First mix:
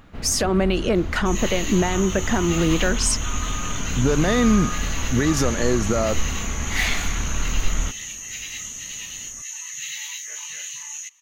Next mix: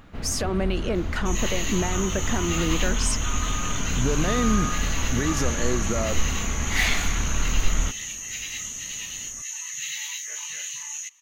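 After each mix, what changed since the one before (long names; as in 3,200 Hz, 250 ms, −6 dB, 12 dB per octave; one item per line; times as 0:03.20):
speech −6.0 dB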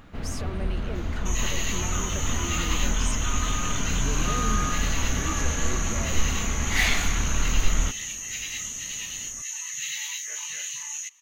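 speech −11.0 dB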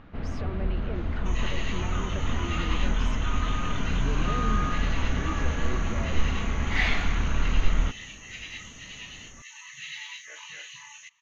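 master: add high-frequency loss of the air 240 metres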